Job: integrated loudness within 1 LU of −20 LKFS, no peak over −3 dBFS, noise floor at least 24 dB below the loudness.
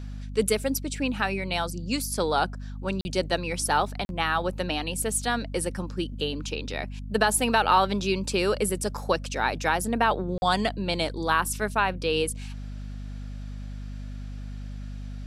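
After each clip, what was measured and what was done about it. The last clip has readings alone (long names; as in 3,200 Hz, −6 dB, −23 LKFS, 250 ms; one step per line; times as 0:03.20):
number of dropouts 3; longest dropout 41 ms; mains hum 50 Hz; hum harmonics up to 250 Hz; level of the hum −34 dBFS; integrated loudness −26.5 LKFS; sample peak −7.5 dBFS; target loudness −20.0 LKFS
→ repair the gap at 0:03.01/0:04.05/0:10.38, 41 ms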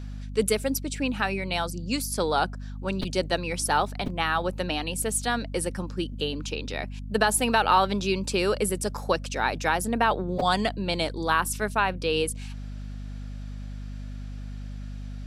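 number of dropouts 0; mains hum 50 Hz; hum harmonics up to 250 Hz; level of the hum −34 dBFS
→ mains-hum notches 50/100/150/200/250 Hz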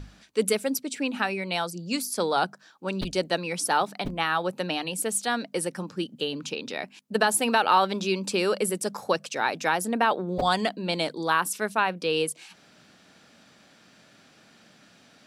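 mains hum none found; integrated loudness −27.0 LKFS; sample peak −8.0 dBFS; target loudness −20.0 LKFS
→ level +7 dB
brickwall limiter −3 dBFS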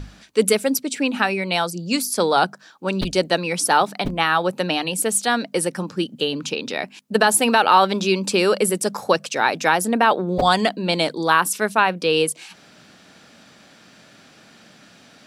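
integrated loudness −20.0 LKFS; sample peak −3.0 dBFS; background noise floor −50 dBFS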